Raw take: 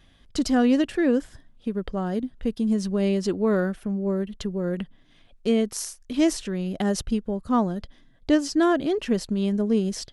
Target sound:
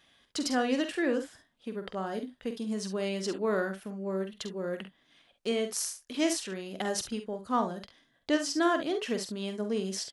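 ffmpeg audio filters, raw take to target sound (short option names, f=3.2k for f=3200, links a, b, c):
-filter_complex "[0:a]highpass=f=670:p=1,asplit=2[a][b];[b]aecho=0:1:47|68:0.376|0.211[c];[a][c]amix=inputs=2:normalize=0,volume=-1.5dB"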